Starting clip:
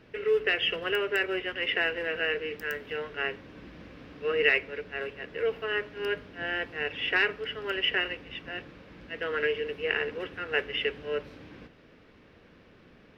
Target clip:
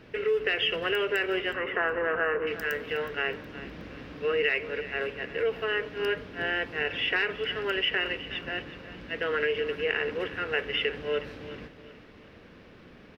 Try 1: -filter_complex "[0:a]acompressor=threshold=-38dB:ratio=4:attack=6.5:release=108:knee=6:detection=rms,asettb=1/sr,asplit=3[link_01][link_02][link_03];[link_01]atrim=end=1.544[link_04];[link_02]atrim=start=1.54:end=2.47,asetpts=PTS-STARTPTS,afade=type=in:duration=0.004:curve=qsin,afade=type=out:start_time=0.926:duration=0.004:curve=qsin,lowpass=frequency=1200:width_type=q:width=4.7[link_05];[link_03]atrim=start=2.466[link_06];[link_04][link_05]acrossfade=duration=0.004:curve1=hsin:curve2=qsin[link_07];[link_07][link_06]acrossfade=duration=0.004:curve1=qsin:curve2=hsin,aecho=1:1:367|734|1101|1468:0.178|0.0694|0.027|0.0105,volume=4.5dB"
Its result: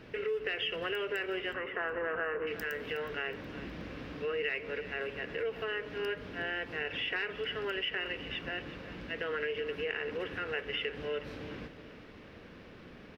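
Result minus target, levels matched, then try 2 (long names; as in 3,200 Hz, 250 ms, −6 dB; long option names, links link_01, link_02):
downward compressor: peak gain reduction +8 dB
-filter_complex "[0:a]acompressor=threshold=-27.5dB:ratio=4:attack=6.5:release=108:knee=6:detection=rms,asettb=1/sr,asplit=3[link_01][link_02][link_03];[link_01]atrim=end=1.544[link_04];[link_02]atrim=start=1.54:end=2.47,asetpts=PTS-STARTPTS,afade=type=in:duration=0.004:curve=qsin,afade=type=out:start_time=0.926:duration=0.004:curve=qsin,lowpass=frequency=1200:width_type=q:width=4.7[link_05];[link_03]atrim=start=2.466[link_06];[link_04][link_05]acrossfade=duration=0.004:curve1=hsin:curve2=qsin[link_07];[link_07][link_06]acrossfade=duration=0.004:curve1=qsin:curve2=hsin,aecho=1:1:367|734|1101|1468:0.178|0.0694|0.027|0.0105,volume=4.5dB"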